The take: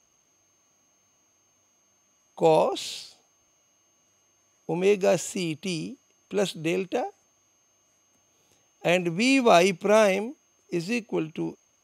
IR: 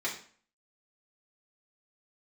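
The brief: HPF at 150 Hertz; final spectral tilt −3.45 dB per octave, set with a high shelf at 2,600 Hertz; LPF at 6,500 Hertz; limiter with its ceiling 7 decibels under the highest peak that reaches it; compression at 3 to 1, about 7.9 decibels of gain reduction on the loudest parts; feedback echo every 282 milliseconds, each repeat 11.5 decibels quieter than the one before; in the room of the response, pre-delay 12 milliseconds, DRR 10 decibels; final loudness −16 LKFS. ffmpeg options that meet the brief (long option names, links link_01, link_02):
-filter_complex "[0:a]highpass=150,lowpass=6500,highshelf=frequency=2600:gain=9,acompressor=threshold=-23dB:ratio=3,alimiter=limit=-18dB:level=0:latency=1,aecho=1:1:282|564|846:0.266|0.0718|0.0194,asplit=2[link_01][link_02];[1:a]atrim=start_sample=2205,adelay=12[link_03];[link_02][link_03]afir=irnorm=-1:irlink=0,volume=-16dB[link_04];[link_01][link_04]amix=inputs=2:normalize=0,volume=14dB"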